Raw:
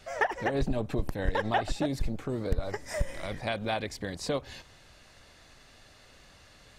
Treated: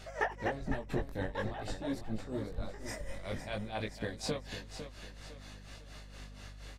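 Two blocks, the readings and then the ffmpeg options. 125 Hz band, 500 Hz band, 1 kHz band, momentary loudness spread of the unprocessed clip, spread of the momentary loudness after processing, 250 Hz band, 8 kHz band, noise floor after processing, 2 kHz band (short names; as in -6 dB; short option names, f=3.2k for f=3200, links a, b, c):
-5.5 dB, -6.5 dB, -8.0 dB, 7 LU, 14 LU, -5.0 dB, -4.0 dB, -51 dBFS, -6.0 dB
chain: -filter_complex "[0:a]acompressor=threshold=-41dB:ratio=2,tremolo=f=4.2:d=0.82,aeval=exprs='val(0)+0.00158*(sin(2*PI*50*n/s)+sin(2*PI*2*50*n/s)/2+sin(2*PI*3*50*n/s)/3+sin(2*PI*4*50*n/s)/4+sin(2*PI*5*50*n/s)/5)':c=same,flanger=delay=18:depth=4.4:speed=0.51,asplit=2[a][b];[b]aecho=0:1:504|1008|1512|2016:0.316|0.126|0.0506|0.0202[c];[a][c]amix=inputs=2:normalize=0,volume=7.5dB"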